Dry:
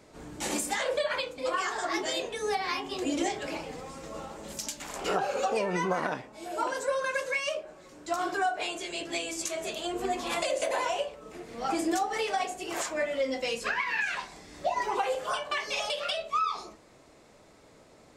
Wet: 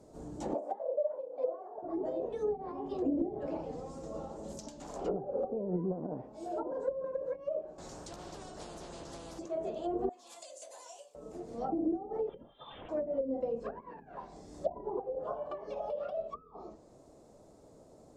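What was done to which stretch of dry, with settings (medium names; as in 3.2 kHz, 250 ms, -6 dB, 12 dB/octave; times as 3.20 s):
0.54–1.83 s: resonant high-pass 640 Hz, resonance Q 3.3
7.78–9.39 s: spectrum-flattening compressor 10:1
10.09–11.15 s: differentiator
12.29–12.89 s: frequency inversion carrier 3.9 kHz
whole clip: low-pass that closes with the level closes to 330 Hz, closed at -25 dBFS; FFT filter 680 Hz 0 dB, 2.2 kHz -21 dB, 6.8 kHz -5 dB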